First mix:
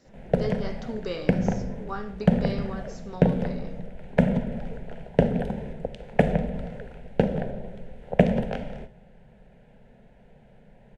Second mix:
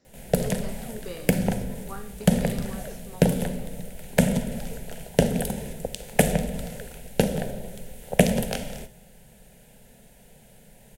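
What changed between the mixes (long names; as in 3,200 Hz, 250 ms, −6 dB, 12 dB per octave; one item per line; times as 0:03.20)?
speech −6.0 dB
background: remove low-pass filter 1,800 Hz 12 dB per octave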